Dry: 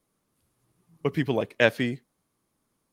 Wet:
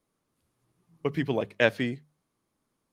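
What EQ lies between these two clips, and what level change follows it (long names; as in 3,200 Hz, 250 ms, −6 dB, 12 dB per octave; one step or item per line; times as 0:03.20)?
high-shelf EQ 10,000 Hz −8.5 dB
mains-hum notches 50/100/150/200 Hz
−2.0 dB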